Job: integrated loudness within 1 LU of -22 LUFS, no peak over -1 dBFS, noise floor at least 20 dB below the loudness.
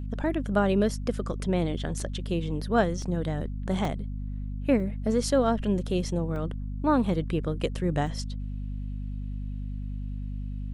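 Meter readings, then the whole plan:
dropouts 6; longest dropout 2.3 ms; hum 50 Hz; harmonics up to 250 Hz; hum level -31 dBFS; loudness -29.0 LUFS; peak -10.0 dBFS; loudness target -22.0 LUFS
-> interpolate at 2/3.02/3.85/4.8/6.36/8.07, 2.3 ms; de-hum 50 Hz, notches 5; gain +7 dB

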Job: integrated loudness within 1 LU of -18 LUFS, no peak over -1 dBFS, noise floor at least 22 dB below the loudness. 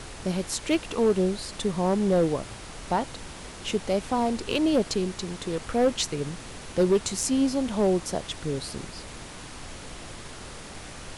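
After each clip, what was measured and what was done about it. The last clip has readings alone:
clipped 0.6%; flat tops at -15.5 dBFS; noise floor -42 dBFS; noise floor target -49 dBFS; loudness -26.5 LUFS; peak -15.5 dBFS; loudness target -18.0 LUFS
-> clip repair -15.5 dBFS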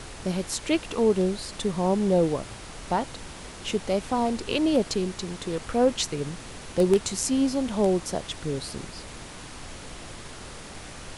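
clipped 0.0%; noise floor -42 dBFS; noise floor target -49 dBFS
-> noise print and reduce 7 dB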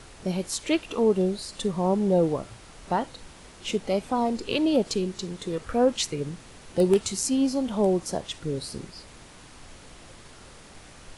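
noise floor -48 dBFS; noise floor target -49 dBFS
-> noise print and reduce 6 dB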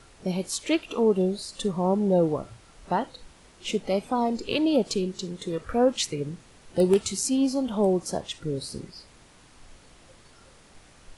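noise floor -54 dBFS; loudness -26.5 LUFS; peak -7.0 dBFS; loudness target -18.0 LUFS
-> gain +8.5 dB; limiter -1 dBFS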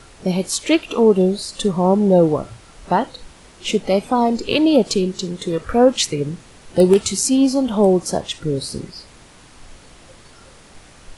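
loudness -18.0 LUFS; peak -1.0 dBFS; noise floor -46 dBFS

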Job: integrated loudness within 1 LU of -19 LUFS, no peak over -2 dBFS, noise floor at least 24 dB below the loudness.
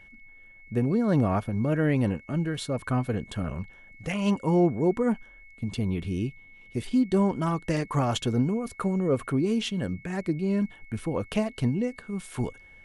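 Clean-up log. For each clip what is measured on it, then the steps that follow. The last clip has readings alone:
steady tone 2200 Hz; tone level -50 dBFS; loudness -27.5 LUFS; peak -12.5 dBFS; loudness target -19.0 LUFS
-> notch 2200 Hz, Q 30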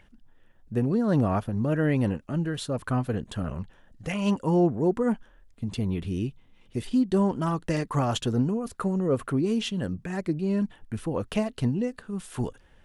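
steady tone none; loudness -27.5 LUFS; peak -12.5 dBFS; loudness target -19.0 LUFS
-> gain +8.5 dB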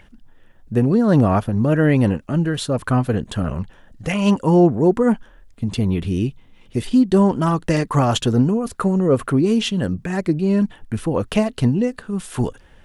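loudness -19.0 LUFS; peak -4.0 dBFS; noise floor -49 dBFS

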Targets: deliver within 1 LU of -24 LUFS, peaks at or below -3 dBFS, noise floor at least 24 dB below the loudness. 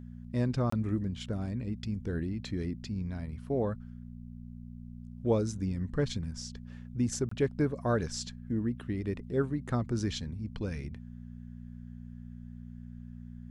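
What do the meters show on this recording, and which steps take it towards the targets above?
dropouts 2; longest dropout 24 ms; hum 60 Hz; harmonics up to 240 Hz; hum level -42 dBFS; loudness -33.5 LUFS; peak -15.5 dBFS; loudness target -24.0 LUFS
-> interpolate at 0.7/7.29, 24 ms; de-hum 60 Hz, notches 4; gain +9.5 dB

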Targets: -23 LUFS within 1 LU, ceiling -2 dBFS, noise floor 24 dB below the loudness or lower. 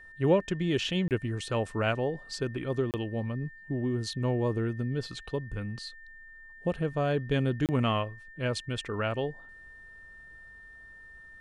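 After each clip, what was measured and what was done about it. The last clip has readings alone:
dropouts 3; longest dropout 28 ms; steady tone 1800 Hz; tone level -48 dBFS; loudness -31.0 LUFS; peak -13.5 dBFS; loudness target -23.0 LUFS
-> interpolate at 1.08/2.91/7.66, 28 ms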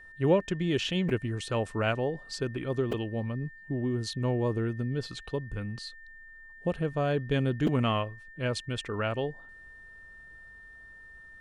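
dropouts 0; steady tone 1800 Hz; tone level -48 dBFS
-> notch 1800 Hz, Q 30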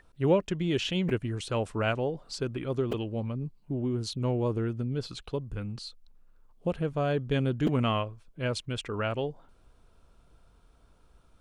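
steady tone none; loudness -31.0 LUFS; peak -13.5 dBFS; loudness target -23.0 LUFS
-> gain +8 dB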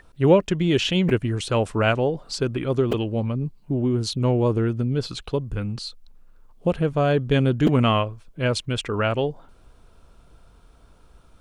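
loudness -23.0 LUFS; peak -5.5 dBFS; noise floor -53 dBFS

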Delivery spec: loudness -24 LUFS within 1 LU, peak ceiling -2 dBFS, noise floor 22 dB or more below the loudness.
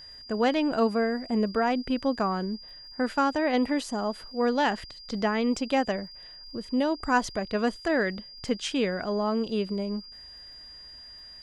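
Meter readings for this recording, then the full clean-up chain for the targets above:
ticks 44/s; steady tone 4800 Hz; tone level -44 dBFS; loudness -27.5 LUFS; peak -11.5 dBFS; loudness target -24.0 LUFS
-> de-click; notch 4800 Hz, Q 30; gain +3.5 dB

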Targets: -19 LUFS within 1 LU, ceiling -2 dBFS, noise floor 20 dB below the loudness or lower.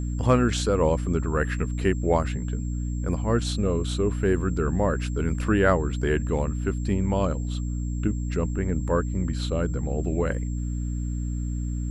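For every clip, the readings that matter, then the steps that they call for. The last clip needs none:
hum 60 Hz; harmonics up to 300 Hz; hum level -26 dBFS; steady tone 7500 Hz; tone level -48 dBFS; loudness -26.0 LUFS; peak -5.5 dBFS; loudness target -19.0 LUFS
-> de-hum 60 Hz, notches 5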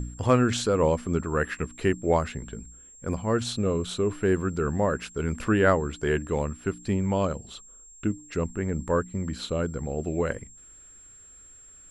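hum none; steady tone 7500 Hz; tone level -48 dBFS
-> notch 7500 Hz, Q 30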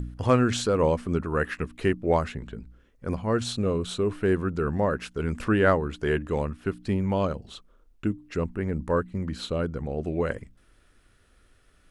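steady tone none; loudness -27.0 LUFS; peak -7.0 dBFS; loudness target -19.0 LUFS
-> gain +8 dB; limiter -2 dBFS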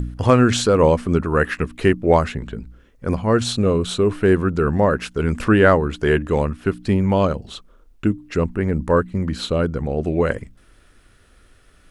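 loudness -19.0 LUFS; peak -2.0 dBFS; noise floor -54 dBFS

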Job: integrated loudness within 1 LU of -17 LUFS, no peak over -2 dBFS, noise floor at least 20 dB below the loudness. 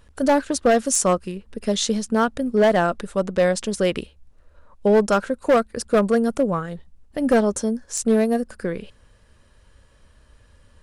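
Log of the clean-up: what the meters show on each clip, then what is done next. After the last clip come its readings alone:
clipped 1.2%; flat tops at -11.0 dBFS; loudness -21.0 LUFS; peak -11.0 dBFS; loudness target -17.0 LUFS
-> clip repair -11 dBFS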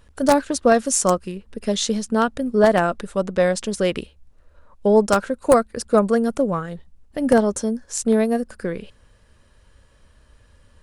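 clipped 0.0%; loudness -20.0 LUFS; peak -2.0 dBFS; loudness target -17.0 LUFS
-> gain +3 dB; limiter -2 dBFS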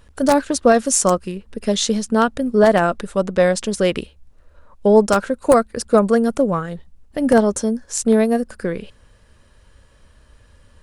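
loudness -17.5 LUFS; peak -2.0 dBFS; noise floor -52 dBFS

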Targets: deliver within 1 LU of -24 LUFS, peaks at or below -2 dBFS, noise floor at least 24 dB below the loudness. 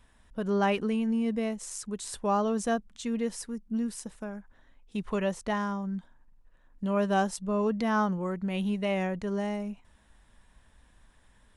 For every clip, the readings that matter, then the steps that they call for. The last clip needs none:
loudness -30.5 LUFS; peak -16.5 dBFS; loudness target -24.0 LUFS
-> gain +6.5 dB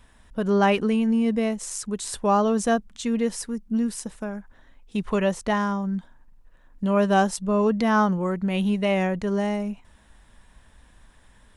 loudness -24.0 LUFS; peak -10.0 dBFS; noise floor -56 dBFS

